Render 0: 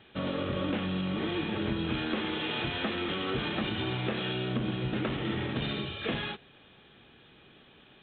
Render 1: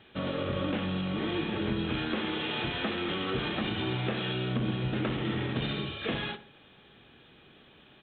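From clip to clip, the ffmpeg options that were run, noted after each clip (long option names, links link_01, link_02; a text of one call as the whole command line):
ffmpeg -i in.wav -filter_complex "[0:a]asplit=2[link_01][link_02];[link_02]adelay=63,lowpass=frequency=1700:poles=1,volume=-11.5dB,asplit=2[link_03][link_04];[link_04]adelay=63,lowpass=frequency=1700:poles=1,volume=0.42,asplit=2[link_05][link_06];[link_06]adelay=63,lowpass=frequency=1700:poles=1,volume=0.42,asplit=2[link_07][link_08];[link_08]adelay=63,lowpass=frequency=1700:poles=1,volume=0.42[link_09];[link_01][link_03][link_05][link_07][link_09]amix=inputs=5:normalize=0" out.wav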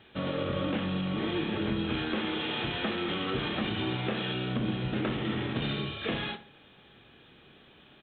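ffmpeg -i in.wav -filter_complex "[0:a]asplit=2[link_01][link_02];[link_02]adelay=28,volume=-11.5dB[link_03];[link_01][link_03]amix=inputs=2:normalize=0" out.wav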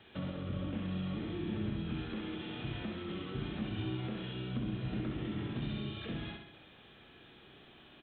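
ffmpeg -i in.wav -filter_complex "[0:a]acrossover=split=250[link_01][link_02];[link_02]acompressor=threshold=-43dB:ratio=10[link_03];[link_01][link_03]amix=inputs=2:normalize=0,aecho=1:1:66|132|198|264|330|396|462:0.562|0.292|0.152|0.0791|0.0411|0.0214|0.0111,volume=-2.5dB" out.wav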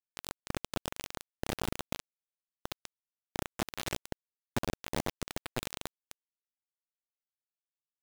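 ffmpeg -i in.wav -af "aresample=16000,volume=29.5dB,asoftclip=hard,volume=-29.5dB,aresample=44100,acrusher=bits=4:mix=0:aa=0.000001,volume=3dB" out.wav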